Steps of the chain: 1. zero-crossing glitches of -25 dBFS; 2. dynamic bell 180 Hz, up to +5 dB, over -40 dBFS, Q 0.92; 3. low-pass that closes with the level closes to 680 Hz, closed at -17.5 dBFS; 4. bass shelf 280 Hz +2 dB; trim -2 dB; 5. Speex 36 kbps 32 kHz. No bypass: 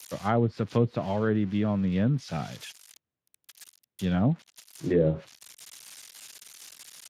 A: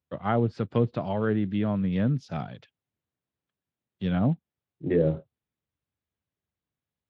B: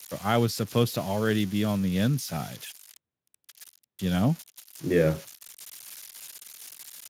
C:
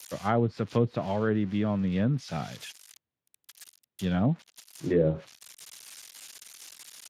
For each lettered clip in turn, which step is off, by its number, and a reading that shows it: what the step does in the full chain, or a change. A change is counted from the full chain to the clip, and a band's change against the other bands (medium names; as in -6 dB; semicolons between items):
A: 1, distortion -8 dB; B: 3, 4 kHz band +7.0 dB; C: 4, momentary loudness spread change -1 LU